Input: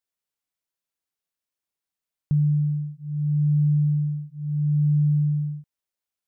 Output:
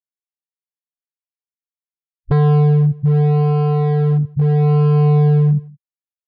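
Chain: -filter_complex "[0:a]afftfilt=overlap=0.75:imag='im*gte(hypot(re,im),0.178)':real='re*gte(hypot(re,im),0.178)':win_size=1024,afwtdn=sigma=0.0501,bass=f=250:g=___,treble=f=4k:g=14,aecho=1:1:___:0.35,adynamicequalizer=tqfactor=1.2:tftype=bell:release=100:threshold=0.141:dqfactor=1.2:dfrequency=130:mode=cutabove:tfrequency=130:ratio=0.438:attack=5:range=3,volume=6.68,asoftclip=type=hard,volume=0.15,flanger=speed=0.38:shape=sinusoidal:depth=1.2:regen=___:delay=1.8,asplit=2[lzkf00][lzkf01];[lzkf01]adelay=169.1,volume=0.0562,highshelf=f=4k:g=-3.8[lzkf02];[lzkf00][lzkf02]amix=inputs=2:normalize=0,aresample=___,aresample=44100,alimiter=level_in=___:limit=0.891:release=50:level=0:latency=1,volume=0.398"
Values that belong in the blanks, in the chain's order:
15, 7.3, -55, 11025, 10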